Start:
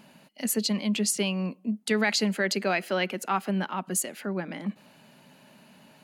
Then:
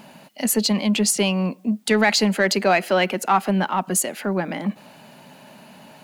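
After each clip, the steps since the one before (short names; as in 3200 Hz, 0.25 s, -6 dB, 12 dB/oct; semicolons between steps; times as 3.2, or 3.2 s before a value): in parallel at -6.5 dB: soft clip -27.5 dBFS, distortion -9 dB; on the sum: bell 770 Hz +5 dB 0.92 oct; requantised 12-bit, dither triangular; gain +4.5 dB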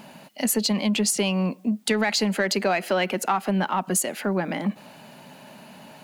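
compressor, threshold -19 dBFS, peak gain reduction 7 dB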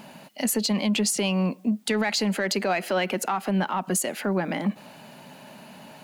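limiter -15.5 dBFS, peak gain reduction 4.5 dB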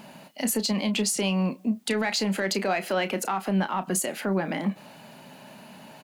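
doubler 31 ms -11.5 dB; gain -1.5 dB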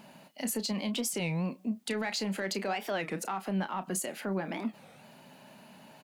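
record warp 33 1/3 rpm, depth 250 cents; gain -7 dB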